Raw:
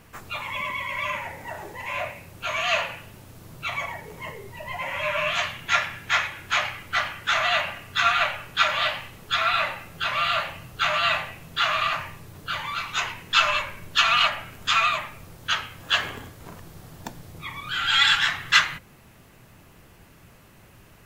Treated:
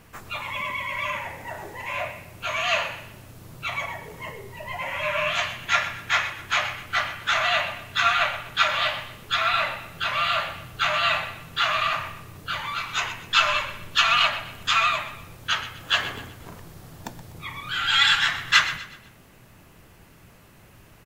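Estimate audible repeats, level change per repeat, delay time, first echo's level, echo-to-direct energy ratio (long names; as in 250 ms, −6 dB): 3, −8.0 dB, 124 ms, −14.0 dB, −13.5 dB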